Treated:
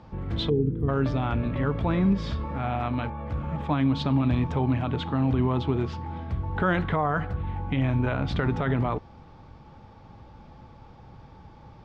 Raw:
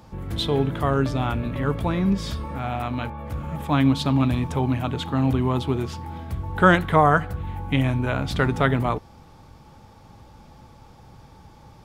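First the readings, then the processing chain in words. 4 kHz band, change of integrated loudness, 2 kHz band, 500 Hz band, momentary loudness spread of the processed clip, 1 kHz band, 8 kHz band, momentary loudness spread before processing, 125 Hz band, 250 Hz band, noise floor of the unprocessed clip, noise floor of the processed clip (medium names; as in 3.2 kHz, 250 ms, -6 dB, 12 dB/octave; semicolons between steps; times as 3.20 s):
-6.0 dB, -3.5 dB, -7.0 dB, -4.5 dB, 8 LU, -6.0 dB, under -15 dB, 14 LU, -2.0 dB, -2.5 dB, -49 dBFS, -50 dBFS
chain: time-frequency box 0.49–0.89 s, 510–8400 Hz -26 dB; peak limiter -14 dBFS, peak gain reduction 10.5 dB; distance through air 190 m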